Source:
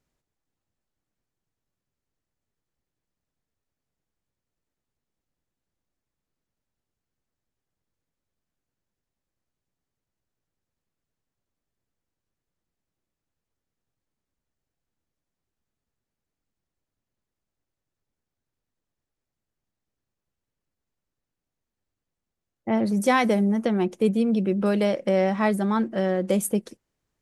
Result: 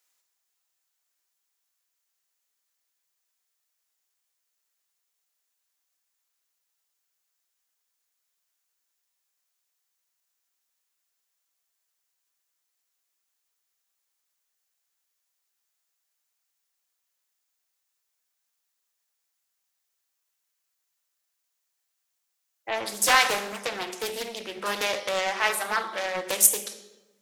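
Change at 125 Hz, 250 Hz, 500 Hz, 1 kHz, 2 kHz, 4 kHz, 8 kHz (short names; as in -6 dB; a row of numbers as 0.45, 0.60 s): -21.5, -21.0, -7.5, +0.5, +5.5, +10.0, +12.5 dB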